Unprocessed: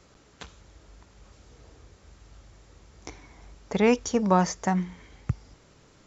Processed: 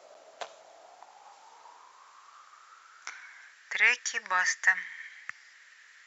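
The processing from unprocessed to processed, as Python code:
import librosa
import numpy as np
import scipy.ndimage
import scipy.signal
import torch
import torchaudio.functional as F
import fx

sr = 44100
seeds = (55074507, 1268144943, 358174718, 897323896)

y = fx.filter_sweep_highpass(x, sr, from_hz=640.0, to_hz=1800.0, start_s=0.47, end_s=3.77, q=7.8)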